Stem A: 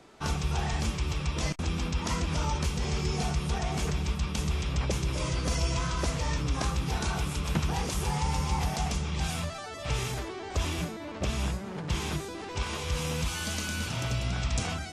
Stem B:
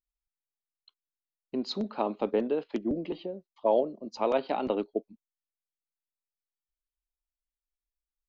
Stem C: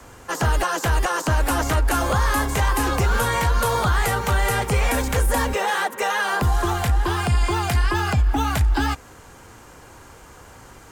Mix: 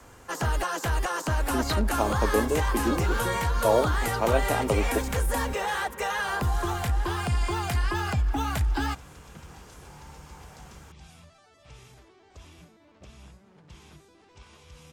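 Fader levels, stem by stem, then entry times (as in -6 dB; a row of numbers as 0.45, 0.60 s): -19.0, +2.0, -6.5 dB; 1.80, 0.00, 0.00 s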